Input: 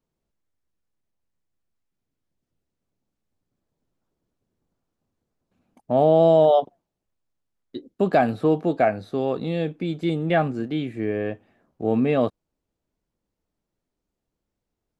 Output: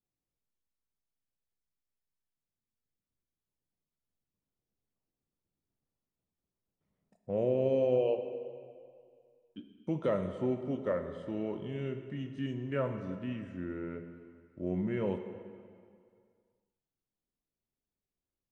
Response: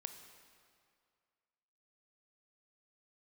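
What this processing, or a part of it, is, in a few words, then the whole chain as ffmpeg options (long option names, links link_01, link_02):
slowed and reverbed: -filter_complex "[0:a]asetrate=35721,aresample=44100[link_01];[1:a]atrim=start_sample=2205[link_02];[link_01][link_02]afir=irnorm=-1:irlink=0,volume=-8.5dB"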